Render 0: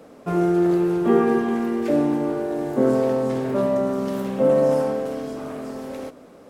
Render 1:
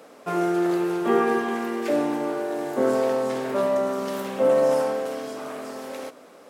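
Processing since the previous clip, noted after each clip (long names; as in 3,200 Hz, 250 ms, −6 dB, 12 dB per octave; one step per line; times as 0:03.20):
high-pass filter 810 Hz 6 dB per octave
level +4 dB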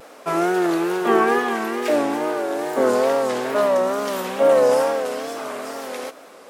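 pitch vibrato 2.3 Hz 87 cents
low-shelf EQ 350 Hz −9.5 dB
level +7 dB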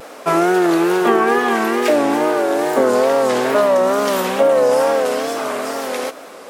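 downward compressor, threshold −18 dBFS, peak gain reduction 7 dB
level +7.5 dB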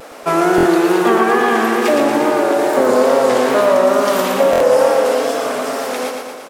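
repeating echo 116 ms, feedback 59%, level −4.5 dB
buffer that repeats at 0:00.56/0:04.51, samples 1,024, times 3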